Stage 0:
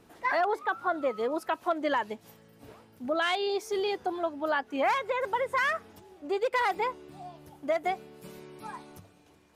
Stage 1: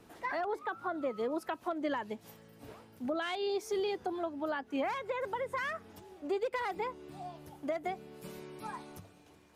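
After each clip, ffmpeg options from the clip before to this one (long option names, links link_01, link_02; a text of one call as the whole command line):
ffmpeg -i in.wav -filter_complex "[0:a]acrossover=split=340[link_01][link_02];[link_02]acompressor=threshold=-38dB:ratio=2.5[link_03];[link_01][link_03]amix=inputs=2:normalize=0" out.wav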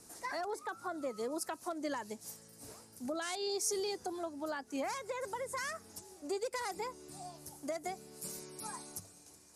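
ffmpeg -i in.wav -af "aexciter=amount=4.5:drive=9.3:freq=4700,lowpass=frequency=11000:width=0.5412,lowpass=frequency=11000:width=1.3066,volume=-4dB" out.wav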